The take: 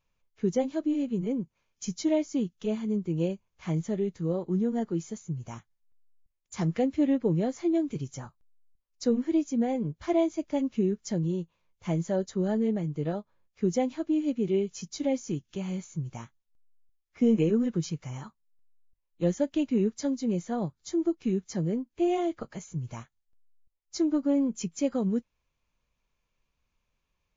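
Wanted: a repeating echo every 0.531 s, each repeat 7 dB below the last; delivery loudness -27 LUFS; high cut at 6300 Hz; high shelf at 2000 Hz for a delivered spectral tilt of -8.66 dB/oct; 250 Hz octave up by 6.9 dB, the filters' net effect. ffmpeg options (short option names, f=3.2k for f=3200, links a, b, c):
-af "lowpass=6.3k,equalizer=f=250:t=o:g=8.5,highshelf=f=2k:g=7,aecho=1:1:531|1062|1593|2124|2655:0.447|0.201|0.0905|0.0407|0.0183,volume=-3.5dB"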